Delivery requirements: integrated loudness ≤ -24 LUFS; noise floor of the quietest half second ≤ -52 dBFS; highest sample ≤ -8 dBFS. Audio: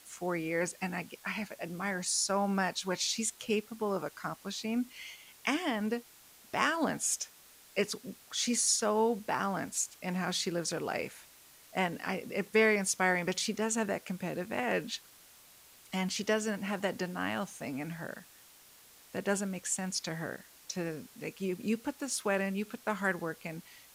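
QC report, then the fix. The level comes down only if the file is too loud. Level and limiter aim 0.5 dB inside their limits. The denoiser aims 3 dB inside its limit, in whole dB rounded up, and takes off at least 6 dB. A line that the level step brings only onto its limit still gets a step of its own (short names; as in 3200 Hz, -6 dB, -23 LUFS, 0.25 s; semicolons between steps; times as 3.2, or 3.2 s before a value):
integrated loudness -33.5 LUFS: OK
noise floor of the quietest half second -58 dBFS: OK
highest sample -13.0 dBFS: OK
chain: none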